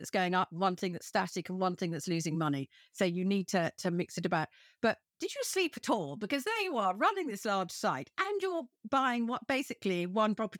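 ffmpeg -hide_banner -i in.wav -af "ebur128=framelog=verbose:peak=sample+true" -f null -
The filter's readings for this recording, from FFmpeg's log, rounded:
Integrated loudness:
  I:         -33.2 LUFS
  Threshold: -43.2 LUFS
Loudness range:
  LRA:         1.2 LU
  Threshold: -53.3 LUFS
  LRA low:   -33.9 LUFS
  LRA high:  -32.7 LUFS
Sample peak:
  Peak:      -16.4 dBFS
True peak:
  Peak:      -16.3 dBFS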